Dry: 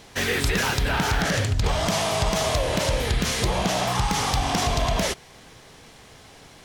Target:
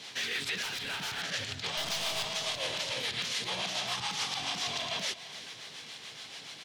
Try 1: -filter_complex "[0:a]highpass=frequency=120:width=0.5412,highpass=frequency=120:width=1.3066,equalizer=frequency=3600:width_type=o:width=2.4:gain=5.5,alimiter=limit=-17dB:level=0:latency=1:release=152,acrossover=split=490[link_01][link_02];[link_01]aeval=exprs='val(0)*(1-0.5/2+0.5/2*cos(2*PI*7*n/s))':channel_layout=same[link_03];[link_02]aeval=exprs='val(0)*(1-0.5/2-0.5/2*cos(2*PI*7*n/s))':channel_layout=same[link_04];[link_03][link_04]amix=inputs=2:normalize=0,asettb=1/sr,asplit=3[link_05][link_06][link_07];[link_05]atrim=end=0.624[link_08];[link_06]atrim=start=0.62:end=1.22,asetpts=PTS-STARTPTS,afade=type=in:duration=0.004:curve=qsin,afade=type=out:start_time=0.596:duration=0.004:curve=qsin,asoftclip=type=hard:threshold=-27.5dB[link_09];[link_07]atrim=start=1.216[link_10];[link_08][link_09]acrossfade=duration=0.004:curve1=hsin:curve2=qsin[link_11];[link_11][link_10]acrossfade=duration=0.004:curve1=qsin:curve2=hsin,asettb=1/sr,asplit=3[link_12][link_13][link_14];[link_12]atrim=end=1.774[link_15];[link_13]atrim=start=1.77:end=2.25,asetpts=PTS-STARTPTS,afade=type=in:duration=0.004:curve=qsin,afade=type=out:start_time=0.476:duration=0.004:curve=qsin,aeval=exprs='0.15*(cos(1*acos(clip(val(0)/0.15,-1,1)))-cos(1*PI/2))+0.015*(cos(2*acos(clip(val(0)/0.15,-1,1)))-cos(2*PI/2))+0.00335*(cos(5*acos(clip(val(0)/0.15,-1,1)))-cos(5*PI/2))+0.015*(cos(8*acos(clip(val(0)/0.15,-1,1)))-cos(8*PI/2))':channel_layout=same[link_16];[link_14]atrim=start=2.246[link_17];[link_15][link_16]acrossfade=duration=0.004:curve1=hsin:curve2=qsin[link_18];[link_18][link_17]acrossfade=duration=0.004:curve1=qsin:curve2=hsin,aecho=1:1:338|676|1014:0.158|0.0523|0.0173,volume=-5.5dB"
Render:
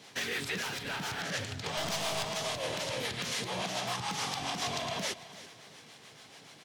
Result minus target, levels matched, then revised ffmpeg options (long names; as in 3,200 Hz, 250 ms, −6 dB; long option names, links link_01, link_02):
4,000 Hz band −3.0 dB
-filter_complex "[0:a]highpass=frequency=120:width=0.5412,highpass=frequency=120:width=1.3066,equalizer=frequency=3600:width_type=o:width=2.4:gain=16.5,alimiter=limit=-17dB:level=0:latency=1:release=152,acrossover=split=490[link_01][link_02];[link_01]aeval=exprs='val(0)*(1-0.5/2+0.5/2*cos(2*PI*7*n/s))':channel_layout=same[link_03];[link_02]aeval=exprs='val(0)*(1-0.5/2-0.5/2*cos(2*PI*7*n/s))':channel_layout=same[link_04];[link_03][link_04]amix=inputs=2:normalize=0,asettb=1/sr,asplit=3[link_05][link_06][link_07];[link_05]atrim=end=0.624[link_08];[link_06]atrim=start=0.62:end=1.22,asetpts=PTS-STARTPTS,afade=type=in:duration=0.004:curve=qsin,afade=type=out:start_time=0.596:duration=0.004:curve=qsin,asoftclip=type=hard:threshold=-27.5dB[link_09];[link_07]atrim=start=1.216[link_10];[link_08][link_09]acrossfade=duration=0.004:curve1=hsin:curve2=qsin[link_11];[link_11][link_10]acrossfade=duration=0.004:curve1=qsin:curve2=hsin,asettb=1/sr,asplit=3[link_12][link_13][link_14];[link_12]atrim=end=1.774[link_15];[link_13]atrim=start=1.77:end=2.25,asetpts=PTS-STARTPTS,afade=type=in:duration=0.004:curve=qsin,afade=type=out:start_time=0.476:duration=0.004:curve=qsin,aeval=exprs='0.15*(cos(1*acos(clip(val(0)/0.15,-1,1)))-cos(1*PI/2))+0.015*(cos(2*acos(clip(val(0)/0.15,-1,1)))-cos(2*PI/2))+0.00335*(cos(5*acos(clip(val(0)/0.15,-1,1)))-cos(5*PI/2))+0.015*(cos(8*acos(clip(val(0)/0.15,-1,1)))-cos(8*PI/2))':channel_layout=same[link_16];[link_14]atrim=start=2.246[link_17];[link_15][link_16]acrossfade=duration=0.004:curve1=hsin:curve2=qsin[link_18];[link_18][link_17]acrossfade=duration=0.004:curve1=qsin:curve2=hsin,aecho=1:1:338|676|1014:0.158|0.0523|0.0173,volume=-5.5dB"